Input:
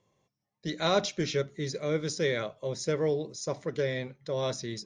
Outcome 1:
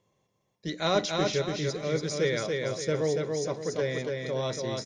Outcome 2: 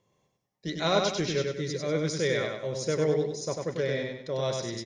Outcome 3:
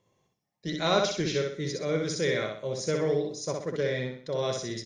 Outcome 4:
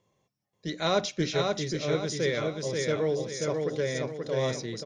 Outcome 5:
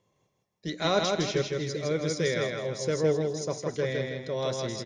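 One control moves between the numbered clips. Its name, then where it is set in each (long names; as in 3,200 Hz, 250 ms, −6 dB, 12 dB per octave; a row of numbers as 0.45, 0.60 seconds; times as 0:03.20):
repeating echo, delay time: 285, 97, 63, 533, 161 milliseconds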